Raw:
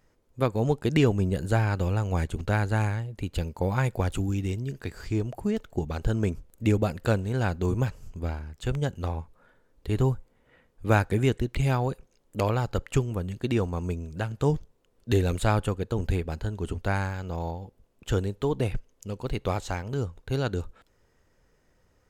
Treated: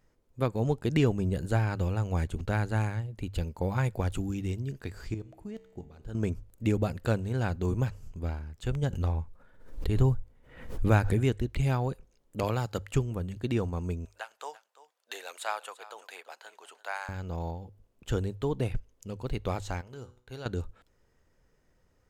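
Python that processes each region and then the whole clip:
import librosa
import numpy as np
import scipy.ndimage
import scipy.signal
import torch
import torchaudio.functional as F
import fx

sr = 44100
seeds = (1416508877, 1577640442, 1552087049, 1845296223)

y = fx.chain(x, sr, fx.level_steps(step_db=14),
    fx.comb_fb(f0_hz=64.0, decay_s=1.4, harmonics='all', damping=0.0, mix_pct=60), at=(5.14, 6.15))
y = fx.chain(y, sr, fx.low_shelf(hz=76.0, db=10.0),
    fx.pre_swell(db_per_s=86.0), at=(8.83, 11.18))
y = fx.chain(y, sr, fx.highpass(hz=100.0, slope=12),
    fx.high_shelf(hz=3600.0, db=7.0), at=(12.43, 12.93))
y = fx.chain(y, sr, fx.highpass(hz=690.0, slope=24),
    fx.echo_single(ms=341, db=-17.0), at=(14.05, 17.09))
y = fx.chain(y, sr, fx.low_shelf(hz=340.0, db=-10.0),
    fx.comb_fb(f0_hz=62.0, decay_s=0.47, harmonics='all', damping=0.0, mix_pct=60), at=(19.81, 20.46))
y = fx.low_shelf(y, sr, hz=190.0, db=3.5)
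y = fx.hum_notches(y, sr, base_hz=50, count=2)
y = y * librosa.db_to_amplitude(-4.5)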